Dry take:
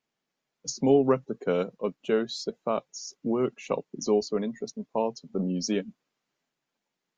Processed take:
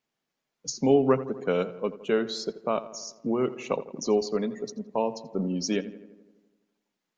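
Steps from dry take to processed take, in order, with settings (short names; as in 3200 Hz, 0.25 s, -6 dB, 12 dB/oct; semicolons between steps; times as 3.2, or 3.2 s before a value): dynamic EQ 2100 Hz, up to +3 dB, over -45 dBFS, Q 0.83; on a send: darkening echo 84 ms, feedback 65%, low-pass 2400 Hz, level -15 dB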